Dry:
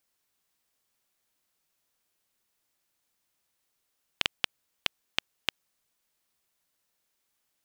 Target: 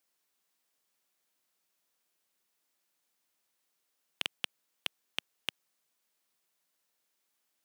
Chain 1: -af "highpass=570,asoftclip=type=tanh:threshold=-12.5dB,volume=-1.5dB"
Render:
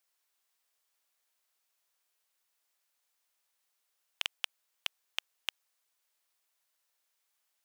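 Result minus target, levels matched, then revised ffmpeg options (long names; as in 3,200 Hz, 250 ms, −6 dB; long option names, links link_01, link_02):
250 Hz band −18.5 dB
-af "highpass=180,asoftclip=type=tanh:threshold=-12.5dB,volume=-1.5dB"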